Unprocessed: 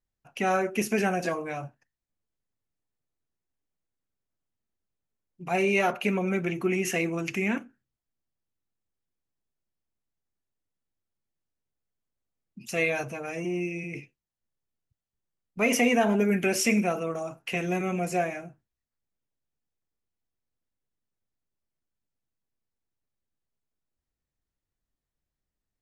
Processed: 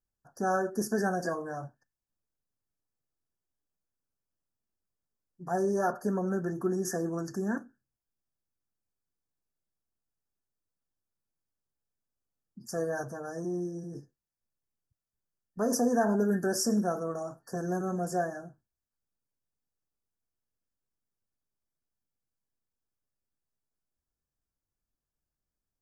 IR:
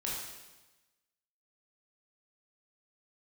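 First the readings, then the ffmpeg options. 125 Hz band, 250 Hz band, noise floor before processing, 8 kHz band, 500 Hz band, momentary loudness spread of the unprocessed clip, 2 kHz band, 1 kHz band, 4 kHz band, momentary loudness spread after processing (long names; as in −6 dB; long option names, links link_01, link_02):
−3.0 dB, −3.0 dB, below −85 dBFS, −3.0 dB, −3.0 dB, 13 LU, −10.5 dB, −3.0 dB, −7.5 dB, 13 LU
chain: -af "afftfilt=real='re*(1-between(b*sr/4096,1800,4500))':imag='im*(1-between(b*sr/4096,1800,4500))':win_size=4096:overlap=0.75,volume=-3dB"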